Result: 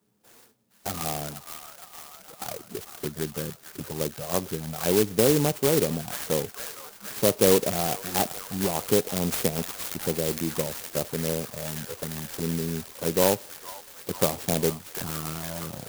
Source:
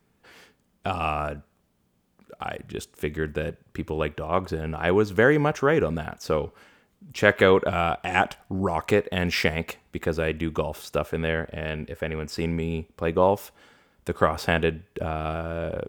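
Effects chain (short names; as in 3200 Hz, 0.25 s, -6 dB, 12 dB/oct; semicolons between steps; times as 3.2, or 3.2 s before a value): HPF 110 Hz 24 dB/oct; thin delay 0.462 s, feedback 76%, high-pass 1500 Hz, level -5 dB; envelope flanger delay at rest 9.9 ms, full sweep at -21.5 dBFS; clock jitter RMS 0.15 ms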